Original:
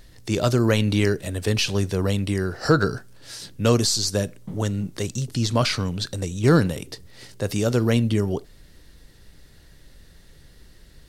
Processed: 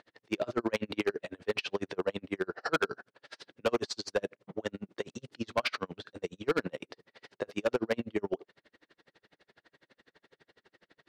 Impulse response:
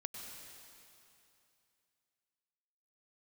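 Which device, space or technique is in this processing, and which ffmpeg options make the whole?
helicopter radio: -af "highpass=390,lowpass=2500,aeval=exprs='val(0)*pow(10,-40*(0.5-0.5*cos(2*PI*12*n/s))/20)':channel_layout=same,asoftclip=type=hard:threshold=-25dB,volume=3.5dB"

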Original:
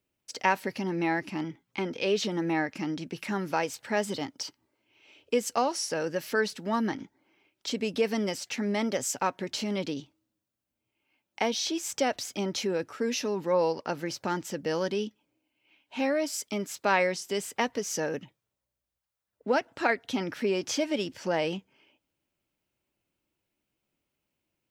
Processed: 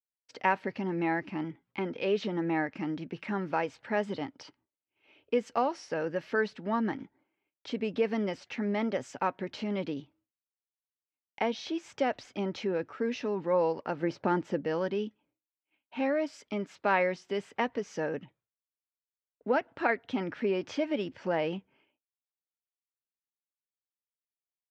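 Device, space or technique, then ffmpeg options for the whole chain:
hearing-loss simulation: -filter_complex "[0:a]asettb=1/sr,asplit=3[link_01][link_02][link_03];[link_01]atrim=end=14.004[link_04];[link_02]atrim=start=14:end=14.63,asetpts=PTS-STARTPTS,afade=type=in:duration=0.004:curve=qsin,afade=type=out:start_time=0.626:duration=0.004:curve=qsin,equalizer=frequency=370:width=0.42:gain=6[link_05];[link_03]atrim=start=14.626[link_06];[link_04][link_05]acrossfade=duration=0.004:curve1=hsin:curve2=qsin[link_07];[link_07][link_06]acrossfade=duration=0.004:curve1=qsin:curve2=hsin,lowpass=2500,agate=range=-33dB:threshold=-59dB:ratio=3:detection=peak,volume=-1.5dB"

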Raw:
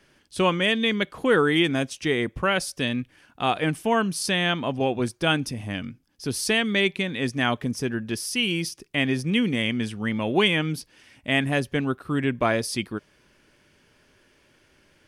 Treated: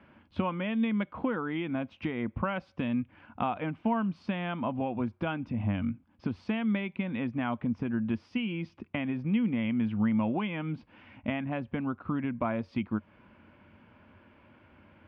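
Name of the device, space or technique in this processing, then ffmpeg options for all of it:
bass amplifier: -af "acompressor=threshold=-33dB:ratio=5,highpass=62,equalizer=frequency=91:width_type=q:width=4:gain=8,equalizer=frequency=140:width_type=q:width=4:gain=-4,equalizer=frequency=220:width_type=q:width=4:gain=7,equalizer=frequency=410:width_type=q:width=4:gain=-10,equalizer=frequency=950:width_type=q:width=4:gain=4,equalizer=frequency=1800:width_type=q:width=4:gain=-9,lowpass=frequency=2300:width=0.5412,lowpass=frequency=2300:width=1.3066,volume=4.5dB"

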